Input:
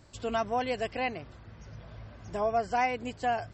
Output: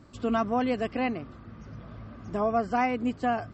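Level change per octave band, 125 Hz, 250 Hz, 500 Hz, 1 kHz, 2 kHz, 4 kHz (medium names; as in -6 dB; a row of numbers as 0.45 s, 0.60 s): +3.5 dB, +10.5 dB, +2.0 dB, +1.0 dB, 0.0 dB, -2.0 dB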